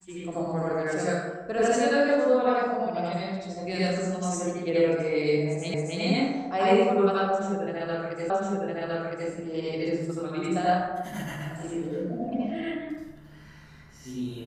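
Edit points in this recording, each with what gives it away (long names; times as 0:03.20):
0:05.74: the same again, the last 0.27 s
0:08.30: the same again, the last 1.01 s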